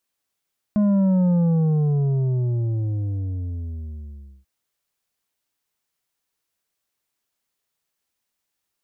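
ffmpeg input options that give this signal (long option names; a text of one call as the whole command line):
ffmpeg -f lavfi -i "aevalsrc='0.158*clip((3.69-t)/3.17,0,1)*tanh(2.24*sin(2*PI*210*3.69/log(65/210)*(exp(log(65/210)*t/3.69)-1)))/tanh(2.24)':duration=3.69:sample_rate=44100" out.wav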